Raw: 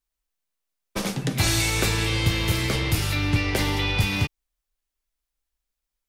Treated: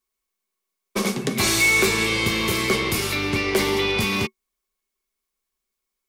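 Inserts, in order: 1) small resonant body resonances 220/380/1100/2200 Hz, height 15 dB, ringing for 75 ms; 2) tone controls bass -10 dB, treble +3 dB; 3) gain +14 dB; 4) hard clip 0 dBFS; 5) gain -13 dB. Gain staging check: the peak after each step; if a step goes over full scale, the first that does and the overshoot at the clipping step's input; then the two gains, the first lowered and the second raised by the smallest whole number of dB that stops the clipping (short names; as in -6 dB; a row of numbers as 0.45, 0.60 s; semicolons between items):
-3.0, -5.0, +9.0, 0.0, -13.0 dBFS; step 3, 9.0 dB; step 3 +5 dB, step 5 -4 dB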